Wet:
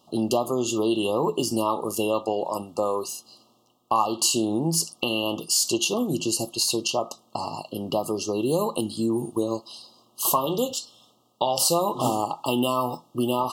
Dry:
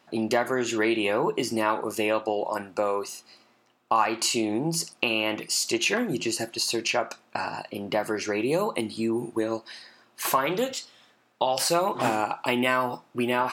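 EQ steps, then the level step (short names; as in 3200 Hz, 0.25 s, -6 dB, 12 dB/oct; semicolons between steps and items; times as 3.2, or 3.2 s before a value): brick-wall FIR band-stop 1300–2700 Hz; low shelf 180 Hz +7.5 dB; high shelf 7100 Hz +9.5 dB; 0.0 dB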